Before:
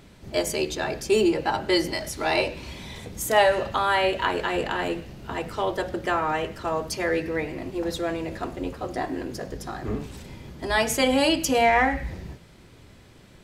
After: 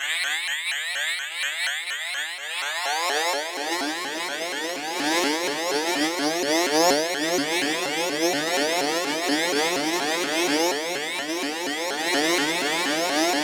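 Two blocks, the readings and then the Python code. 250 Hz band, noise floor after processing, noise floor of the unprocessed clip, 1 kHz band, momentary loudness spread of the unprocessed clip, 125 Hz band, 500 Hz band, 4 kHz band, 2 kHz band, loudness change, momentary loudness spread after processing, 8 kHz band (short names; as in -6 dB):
+1.0 dB, -31 dBFS, -51 dBFS, -0.5 dB, 14 LU, -11.0 dB, -1.0 dB, +7.0 dB, +4.5 dB, +1.5 dB, 6 LU, +7.5 dB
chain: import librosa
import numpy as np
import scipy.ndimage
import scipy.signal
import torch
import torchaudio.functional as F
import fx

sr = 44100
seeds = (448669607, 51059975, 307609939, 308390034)

p1 = fx.bin_compress(x, sr, power=0.2)
p2 = fx.weighting(p1, sr, curve='D')
p3 = fx.over_compress(p2, sr, threshold_db=-12.0, ratio=-0.5)
p4 = fx.comb_fb(p3, sr, f0_hz=160.0, decay_s=0.66, harmonics='all', damping=0.0, mix_pct=100)
p5 = fx.filter_sweep_highpass(p4, sr, from_hz=1800.0, to_hz=230.0, start_s=2.31, end_s=4.06, q=1.5)
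p6 = p5 + fx.echo_diffused(p5, sr, ms=1257, feedback_pct=65, wet_db=-12.5, dry=0)
p7 = (np.kron(scipy.signal.resample_poly(p6, 1, 8), np.eye(8)[0]) * 8)[:len(p6)]
p8 = fx.spacing_loss(p7, sr, db_at_10k=22)
p9 = fx.vibrato_shape(p8, sr, shape='saw_up', rate_hz=4.2, depth_cents=250.0)
y = F.gain(torch.from_numpy(p9), 4.5).numpy()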